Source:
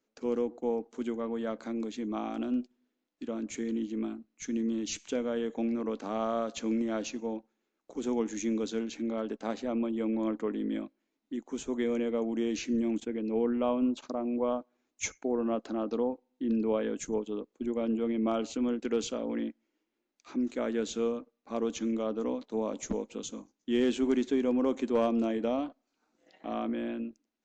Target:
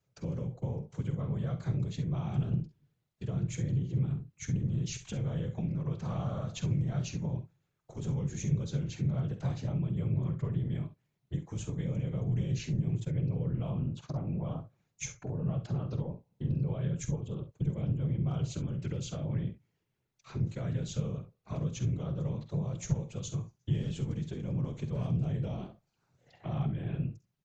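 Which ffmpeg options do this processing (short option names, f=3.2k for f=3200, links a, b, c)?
-filter_complex "[0:a]acrossover=split=300|3000[a][b][c];[b]acompressor=threshold=-40dB:ratio=2[d];[a][d][c]amix=inputs=3:normalize=0,afftfilt=real='hypot(re,im)*cos(2*PI*random(0))':imag='hypot(re,im)*sin(2*PI*random(1))':win_size=512:overlap=0.75,acompressor=threshold=-41dB:ratio=5,lowshelf=f=190:t=q:w=3:g=11.5,asplit=2[e][f];[f]aecho=0:1:48|66:0.251|0.2[g];[e][g]amix=inputs=2:normalize=0,volume=5dB"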